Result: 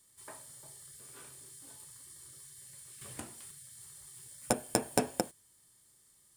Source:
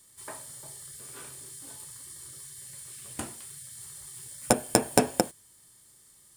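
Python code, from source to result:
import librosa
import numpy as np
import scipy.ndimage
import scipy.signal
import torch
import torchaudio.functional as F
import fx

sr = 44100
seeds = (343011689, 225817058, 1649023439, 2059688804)

y = fx.band_squash(x, sr, depth_pct=70, at=(3.01, 3.51))
y = y * librosa.db_to_amplitude(-7.5)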